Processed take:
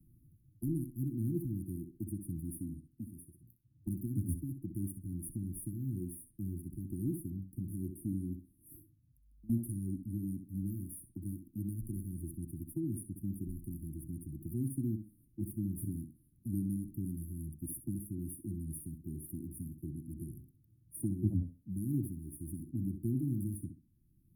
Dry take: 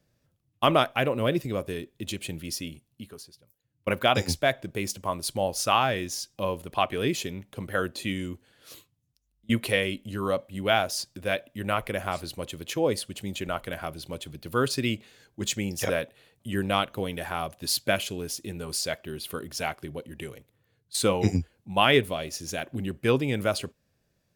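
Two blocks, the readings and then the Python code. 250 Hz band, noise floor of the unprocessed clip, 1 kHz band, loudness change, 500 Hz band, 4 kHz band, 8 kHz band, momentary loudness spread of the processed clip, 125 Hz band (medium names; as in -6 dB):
-5.5 dB, -73 dBFS, under -40 dB, -11.5 dB, -23.5 dB, under -40 dB, -14.5 dB, 10 LU, -3.5 dB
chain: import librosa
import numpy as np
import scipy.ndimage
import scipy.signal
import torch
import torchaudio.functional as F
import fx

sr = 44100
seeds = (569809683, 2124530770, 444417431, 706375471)

p1 = fx.brickwall_bandstop(x, sr, low_hz=360.0, high_hz=9200.0)
p2 = fx.low_shelf(p1, sr, hz=77.0, db=11.0)
p3 = p2 + fx.echo_tape(p2, sr, ms=64, feedback_pct=26, wet_db=-7.0, lp_hz=5300.0, drive_db=8.0, wow_cents=34, dry=0)
p4 = fx.band_squash(p3, sr, depth_pct=40)
y = p4 * 10.0 ** (-6.5 / 20.0)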